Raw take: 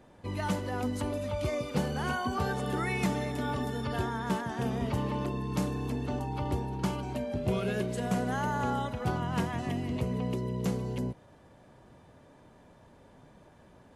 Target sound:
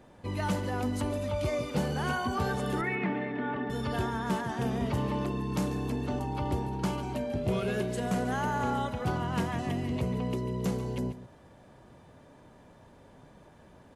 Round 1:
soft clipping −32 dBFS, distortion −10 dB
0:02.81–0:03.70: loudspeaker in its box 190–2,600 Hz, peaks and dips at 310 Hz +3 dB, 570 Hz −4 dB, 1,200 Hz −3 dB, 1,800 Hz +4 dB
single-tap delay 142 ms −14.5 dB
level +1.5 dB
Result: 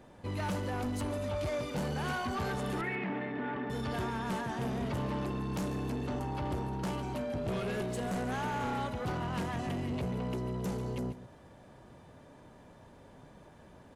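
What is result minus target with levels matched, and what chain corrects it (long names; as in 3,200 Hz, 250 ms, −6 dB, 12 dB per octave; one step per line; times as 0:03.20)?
soft clipping: distortion +13 dB
soft clipping −20.5 dBFS, distortion −22 dB
0:02.81–0:03.70: loudspeaker in its box 190–2,600 Hz, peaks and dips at 310 Hz +3 dB, 570 Hz −4 dB, 1,200 Hz −3 dB, 1,800 Hz +4 dB
single-tap delay 142 ms −14.5 dB
level +1.5 dB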